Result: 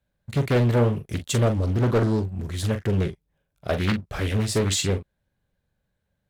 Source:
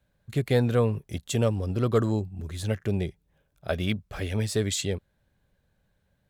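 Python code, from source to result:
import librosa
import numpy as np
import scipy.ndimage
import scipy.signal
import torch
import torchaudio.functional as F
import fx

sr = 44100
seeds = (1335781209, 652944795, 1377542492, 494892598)

y = fx.leveller(x, sr, passes=2)
y = fx.doubler(y, sr, ms=42.0, db=-9.0)
y = fx.doppler_dist(y, sr, depth_ms=0.65)
y = F.gain(torch.from_numpy(y), -2.0).numpy()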